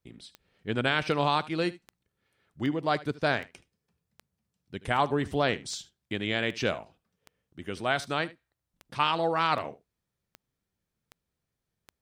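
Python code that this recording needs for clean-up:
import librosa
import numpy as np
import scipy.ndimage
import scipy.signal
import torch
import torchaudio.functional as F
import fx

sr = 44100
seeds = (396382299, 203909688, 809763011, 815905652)

y = fx.fix_declick_ar(x, sr, threshold=10.0)
y = fx.fix_echo_inverse(y, sr, delay_ms=75, level_db=-19.0)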